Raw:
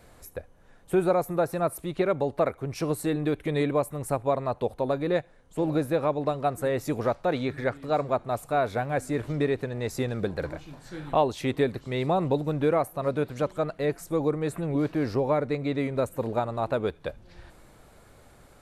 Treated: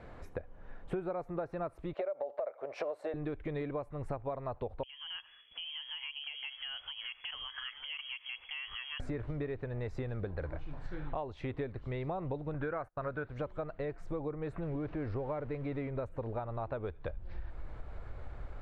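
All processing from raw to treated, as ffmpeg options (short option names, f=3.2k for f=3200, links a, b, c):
-filter_complex "[0:a]asettb=1/sr,asplit=3[a][b][c];[a]atrim=end=1.934[d];[b]atrim=start=1.93:end=3.14,asetpts=PTS-STARTPTS,afade=t=in:d=0.004:c=qsin,afade=t=out:st=1.206:d=0.004:c=qsin,highpass=f=590:t=q:w=6.8,acompressor=threshold=-21dB:ratio=3:attack=3.2:release=140:knee=1:detection=peak[e];[c]atrim=start=3.136[f];[d][e]acrossfade=d=0.004:c1=hsin:c2=qsin[g];[g][f]acrossfade=d=0.004:c1=qsin:c2=hsin,asettb=1/sr,asplit=3[h][i][j];[h]atrim=end=4.834[k];[i]atrim=start=4.83:end=9,asetpts=PTS-STARTPTS,afade=t=in:d=0.004:c=qsin,afade=t=out:st=4.166:d=0.004:c=qsin,acompressor=threshold=-36dB:ratio=12:attack=3.2:release=140:knee=1:detection=peak,lowpass=f=2.9k:t=q:w=0.5098,lowpass=f=2.9k:t=q:w=0.6013,lowpass=f=2.9k:t=q:w=0.9,lowpass=f=2.9k:t=q:w=2.563,afreqshift=-3400[l];[j]atrim=start=8.996[m];[k][l]acrossfade=d=0.004:c1=hsin:c2=qsin[n];[n][m]acrossfade=d=0.004:c1=qsin:c2=hsin,asettb=1/sr,asplit=3[o][p][q];[o]atrim=end=12.544[r];[p]atrim=start=12.54:end=13.29,asetpts=PTS-STARTPTS,afade=t=in:d=0.004:c=qsin,afade=t=out:st=0.746:d=0.004:c=qsin,equalizer=f=1.5k:t=o:w=0.46:g=12.5,agate=range=-29dB:threshold=-38dB:ratio=16:release=100:detection=peak[s];[q]atrim=start=13.286[t];[r][s]acrossfade=d=0.004:c1=hsin:c2=qsin[u];[u][t]acrossfade=d=0.004:c1=qsin:c2=hsin,asettb=1/sr,asplit=3[v][w][x];[v]atrim=end=14.634[y];[w]atrim=start=14.63:end=15.89,asetpts=PTS-STARTPTS,afade=t=in:d=0.004:c=qsin,afade=t=out:st=1.256:d=0.004:c=qsin,aeval=exprs='val(0)+0.5*0.0106*sgn(val(0))':c=same,adynamicsmooth=sensitivity=3.5:basefreq=5.1k[z];[x]atrim=start=15.886[aa];[y][z]acrossfade=d=0.004:c1=hsin:c2=qsin[ab];[ab][aa]acrossfade=d=0.004:c1=qsin:c2=hsin,lowpass=2.2k,asubboost=boost=6:cutoff=74,acompressor=threshold=-39dB:ratio=6,volume=3.5dB"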